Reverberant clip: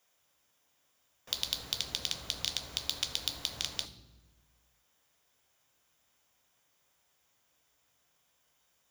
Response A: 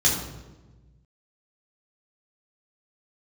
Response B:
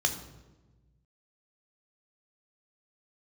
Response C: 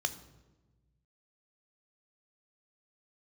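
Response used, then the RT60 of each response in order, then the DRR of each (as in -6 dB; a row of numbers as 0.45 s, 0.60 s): C; 1.2 s, 1.2 s, 1.2 s; -5.0 dB, 4.5 dB, 9.0 dB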